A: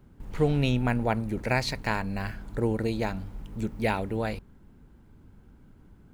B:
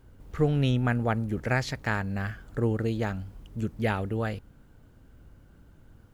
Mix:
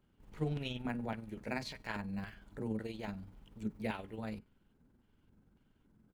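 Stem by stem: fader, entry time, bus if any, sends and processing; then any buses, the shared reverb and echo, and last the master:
−7.5 dB, 0.00 s, no send, tuned comb filter 210 Hz, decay 0.42 s, harmonics all, mix 40%; amplitude modulation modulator 21 Hz, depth 35%
−4.0 dB, 17 ms, polarity flipped, no send, high-shelf EQ 4,700 Hz −9 dB; notch filter 3,800 Hz, Q 14; auto-filter band-pass square 1.8 Hz 210–3,200 Hz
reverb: not used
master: low-shelf EQ 210 Hz −5 dB

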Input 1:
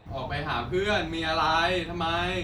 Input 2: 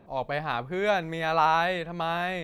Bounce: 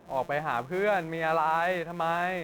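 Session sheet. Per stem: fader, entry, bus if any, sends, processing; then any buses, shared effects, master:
−7.0 dB, 0.00 s, no send, samples sorted by size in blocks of 256 samples; sample-rate reduction 4,600 Hz, jitter 0%; automatic ducking −10 dB, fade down 0.30 s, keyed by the second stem
+1.5 dB, 0.00 s, polarity flipped, no send, low-pass filter 2,300 Hz 12 dB per octave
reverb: not used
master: low-shelf EQ 140 Hz −10 dB; brickwall limiter −16 dBFS, peak gain reduction 7 dB

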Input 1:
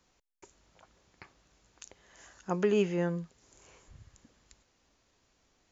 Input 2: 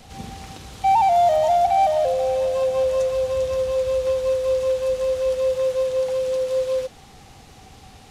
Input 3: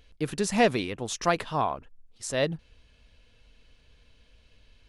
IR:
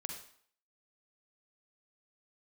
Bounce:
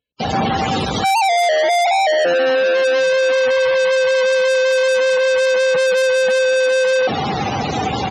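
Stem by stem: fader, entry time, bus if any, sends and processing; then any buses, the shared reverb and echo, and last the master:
−12.0 dB, 0.00 s, no send, spectral dynamics exaggerated over time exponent 1.5
−1.0 dB, 0.20 s, no send, fuzz pedal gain 50 dB, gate −59 dBFS
−19.0 dB, 0.00 s, no send, no processing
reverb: not used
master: high-pass filter 140 Hz 12 dB per octave; spectral peaks only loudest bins 64

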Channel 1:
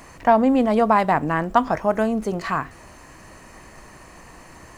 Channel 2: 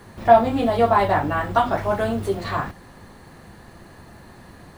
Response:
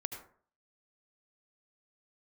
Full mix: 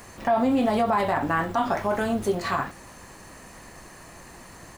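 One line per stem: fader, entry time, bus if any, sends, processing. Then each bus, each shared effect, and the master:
−4.0 dB, 0.00 s, no send, high-shelf EQ 5,100 Hz +8.5 dB
−2.5 dB, 1 ms, no send, low-shelf EQ 220 Hz −7.5 dB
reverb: not used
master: brickwall limiter −14 dBFS, peak gain reduction 11.5 dB

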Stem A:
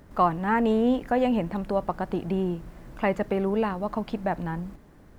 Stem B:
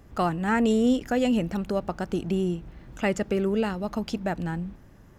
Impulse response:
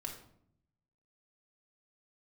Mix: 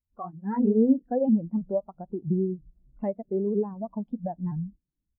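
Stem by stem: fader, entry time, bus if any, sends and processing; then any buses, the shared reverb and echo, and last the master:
+1.0 dB, 0.00 s, no send, downward compressor 3 to 1, threshold −29 dBFS, peak gain reduction 10 dB; pitch modulation by a square or saw wave saw up 3.1 Hz, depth 160 cents
−10.5 dB, 0.8 ms, polarity flipped, no send, sine wavefolder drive 6 dB, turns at −10.5 dBFS; automatic ducking −23 dB, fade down 1.95 s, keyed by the first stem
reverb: not used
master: automatic gain control gain up to 6 dB; every bin expanded away from the loudest bin 2.5 to 1

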